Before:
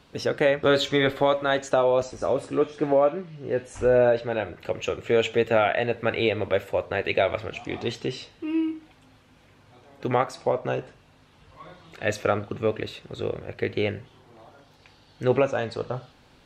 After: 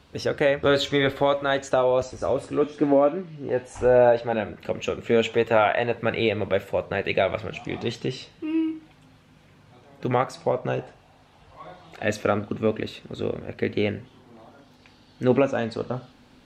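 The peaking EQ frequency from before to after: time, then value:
peaking EQ +9 dB 0.52 oct
78 Hz
from 2.63 s 260 Hz
from 3.49 s 820 Hz
from 4.33 s 210 Hz
from 5.29 s 1 kHz
from 5.98 s 170 Hz
from 10.80 s 740 Hz
from 12.03 s 240 Hz

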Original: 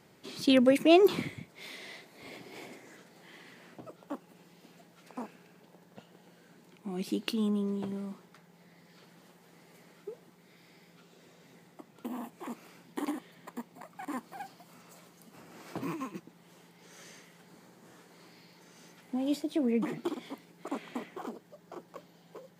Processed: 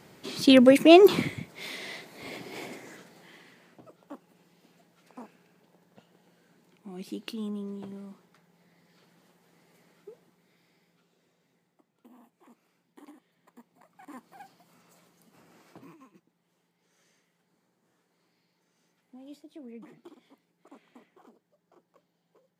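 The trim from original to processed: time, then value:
2.86 s +6.5 dB
3.68 s -5 dB
10.12 s -5 dB
11.92 s -17 dB
13.15 s -17 dB
14.41 s -6 dB
15.51 s -6 dB
15.94 s -16.5 dB

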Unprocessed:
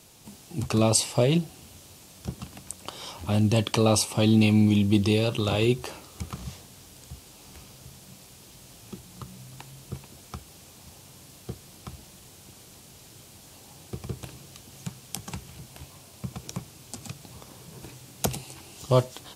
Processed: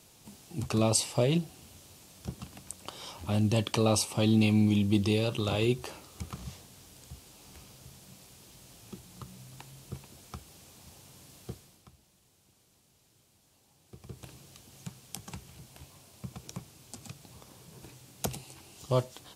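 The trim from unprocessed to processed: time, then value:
11.52 s -4.5 dB
11.92 s -17 dB
13.82 s -17 dB
14.30 s -6.5 dB

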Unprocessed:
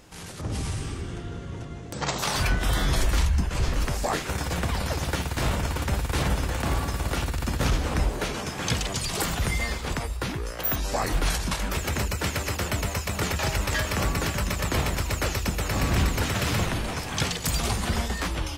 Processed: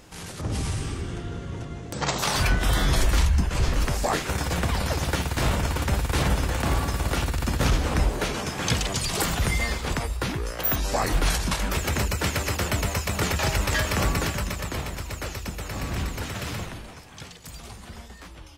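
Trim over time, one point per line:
14.14 s +2 dB
14.82 s -6 dB
16.50 s -6 dB
17.10 s -15 dB

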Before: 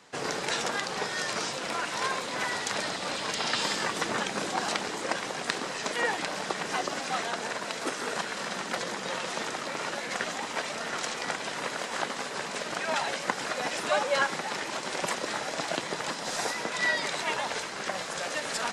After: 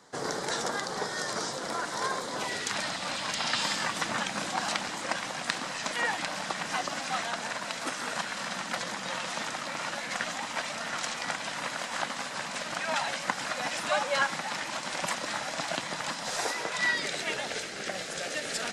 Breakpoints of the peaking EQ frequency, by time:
peaking EQ -13 dB 0.51 oct
2.33 s 2.6 kHz
2.80 s 410 Hz
16.24 s 410 Hz
16.51 s 140 Hz
17.06 s 1 kHz

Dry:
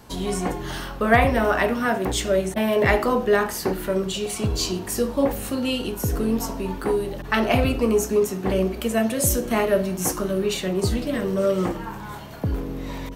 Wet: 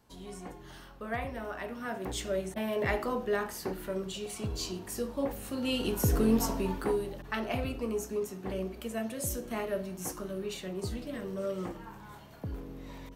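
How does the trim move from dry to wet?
1.60 s -18.5 dB
2.13 s -11.5 dB
5.46 s -11.5 dB
5.92 s -2.5 dB
6.54 s -2.5 dB
7.41 s -13.5 dB

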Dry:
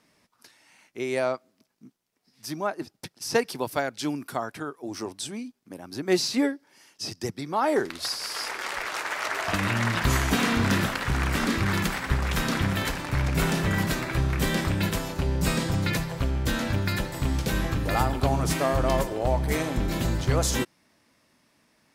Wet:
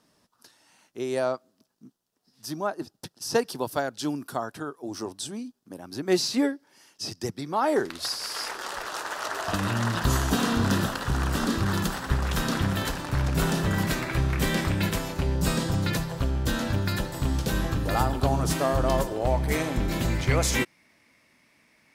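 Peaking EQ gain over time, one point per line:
peaking EQ 2.2 kHz 0.43 oct
-11 dB
from 5.79 s -4.5 dB
from 8.53 s -14 dB
from 12.09 s -8 dB
from 13.83 s +0.5 dB
from 15.34 s -6.5 dB
from 19.23 s +1.5 dB
from 20.10 s +11 dB

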